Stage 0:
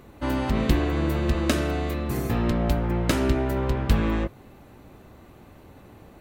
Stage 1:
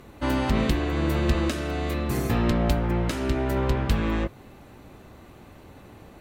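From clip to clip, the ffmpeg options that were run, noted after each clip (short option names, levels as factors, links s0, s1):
-af "crystalizer=i=4.5:c=0,alimiter=limit=0.398:level=0:latency=1:release=478,aemphasis=mode=reproduction:type=75fm"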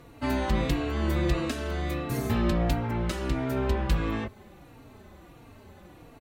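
-filter_complex "[0:a]asplit=2[s0][s1];[s1]adelay=3.7,afreqshift=-1.5[s2];[s0][s2]amix=inputs=2:normalize=1"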